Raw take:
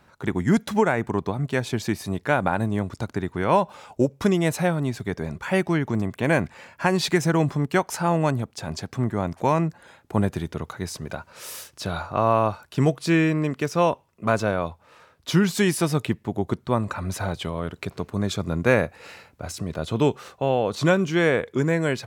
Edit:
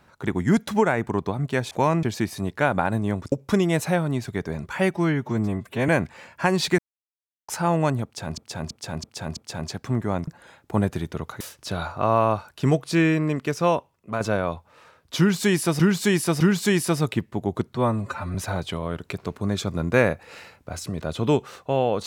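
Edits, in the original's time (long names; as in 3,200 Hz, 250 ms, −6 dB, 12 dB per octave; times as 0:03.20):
0:03.00–0:04.04: remove
0:05.66–0:06.29: time-stretch 1.5×
0:07.19–0:07.89: silence
0:08.45–0:08.78: repeat, 5 plays
0:09.36–0:09.68: move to 0:01.71
0:10.81–0:11.55: remove
0:13.77–0:14.35: fade out, to −7 dB
0:15.33–0:15.94: repeat, 3 plays
0:16.67–0:17.07: time-stretch 1.5×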